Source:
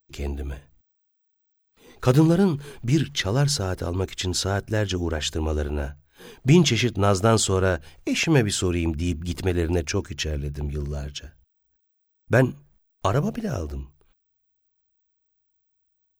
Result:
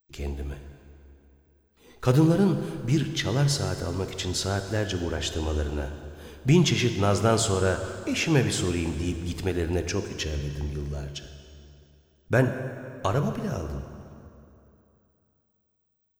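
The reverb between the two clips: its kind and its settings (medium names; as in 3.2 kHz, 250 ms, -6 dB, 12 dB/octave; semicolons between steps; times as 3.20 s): plate-style reverb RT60 2.8 s, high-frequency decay 0.75×, DRR 7 dB; trim -3.5 dB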